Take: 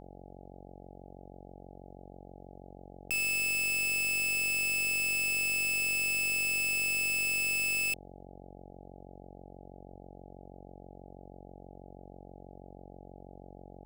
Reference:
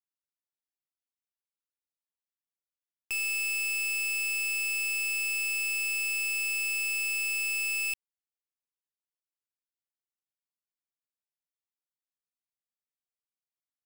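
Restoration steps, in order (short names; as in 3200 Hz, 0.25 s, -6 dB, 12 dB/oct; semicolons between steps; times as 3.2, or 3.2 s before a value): de-hum 46.2 Hz, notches 18; 8.24 gain correction +3.5 dB; 8.68–8.8 HPF 140 Hz 24 dB/oct; 9.91–10.03 HPF 140 Hz 24 dB/oct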